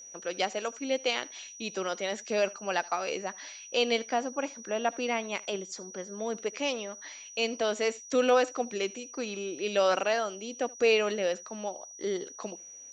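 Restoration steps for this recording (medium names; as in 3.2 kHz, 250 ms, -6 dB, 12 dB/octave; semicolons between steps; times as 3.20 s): clip repair -13.5 dBFS; band-stop 5.8 kHz, Q 30; inverse comb 76 ms -23.5 dB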